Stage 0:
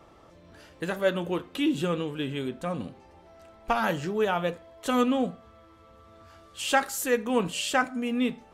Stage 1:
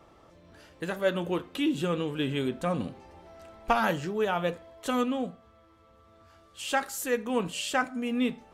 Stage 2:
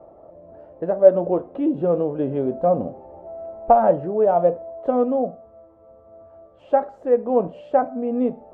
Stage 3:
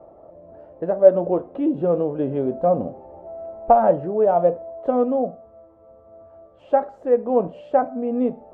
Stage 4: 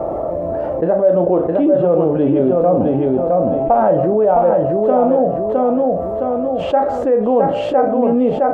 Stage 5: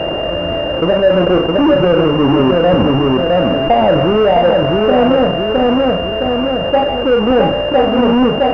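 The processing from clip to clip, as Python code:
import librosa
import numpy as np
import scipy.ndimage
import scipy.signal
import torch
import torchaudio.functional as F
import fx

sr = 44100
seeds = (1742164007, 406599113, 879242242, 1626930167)

y1 = fx.rider(x, sr, range_db=4, speed_s=0.5)
y1 = y1 * 10.0 ** (-1.5 / 20.0)
y2 = fx.lowpass_res(y1, sr, hz=640.0, q=4.4)
y2 = fx.low_shelf(y2, sr, hz=190.0, db=-4.0)
y2 = y2 * 10.0 ** (5.0 / 20.0)
y3 = y2
y4 = fx.doubler(y3, sr, ms=38.0, db=-11.0)
y4 = fx.echo_feedback(y4, sr, ms=663, feedback_pct=26, wet_db=-5)
y4 = fx.env_flatten(y4, sr, amount_pct=70)
y4 = y4 * 10.0 ** (-3.5 / 20.0)
y5 = fx.halfwave_hold(y4, sr)
y5 = fx.add_hum(y5, sr, base_hz=50, snr_db=23)
y5 = fx.pwm(y5, sr, carrier_hz=2800.0)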